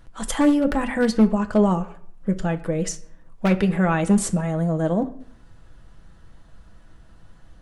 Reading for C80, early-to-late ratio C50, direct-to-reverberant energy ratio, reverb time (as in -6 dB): 19.5 dB, 16.0 dB, 6.0 dB, 0.65 s